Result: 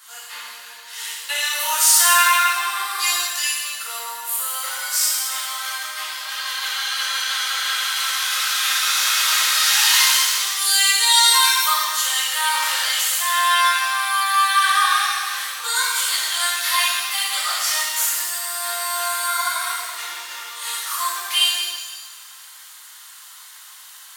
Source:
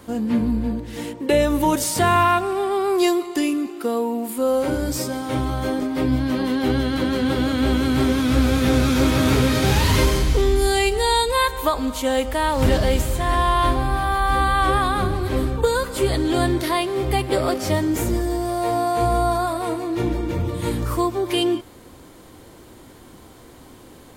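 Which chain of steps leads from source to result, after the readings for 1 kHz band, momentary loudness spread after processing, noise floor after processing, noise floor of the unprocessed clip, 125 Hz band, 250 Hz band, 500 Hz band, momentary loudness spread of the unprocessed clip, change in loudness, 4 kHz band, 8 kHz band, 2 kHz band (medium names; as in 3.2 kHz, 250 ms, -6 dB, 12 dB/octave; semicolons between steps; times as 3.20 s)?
+0.5 dB, 14 LU, -42 dBFS, -45 dBFS, under -40 dB, under -40 dB, -20.5 dB, 6 LU, +3.0 dB, +10.5 dB, +13.5 dB, +7.0 dB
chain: high-pass 1.2 kHz 24 dB/octave; treble shelf 2.8 kHz +8 dB; band-stop 2.3 kHz, Q 10; pitch-shifted reverb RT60 1.4 s, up +7 st, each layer -8 dB, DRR -7 dB; trim -2.5 dB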